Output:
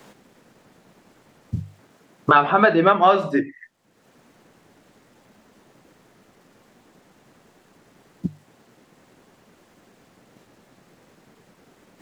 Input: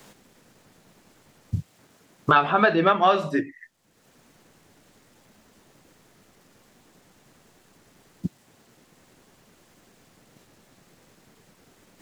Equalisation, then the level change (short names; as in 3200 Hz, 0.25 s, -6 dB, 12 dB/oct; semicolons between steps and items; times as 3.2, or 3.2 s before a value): low shelf 68 Hz -10.5 dB; high shelf 3000 Hz -8.5 dB; notches 50/100/150 Hz; +4.5 dB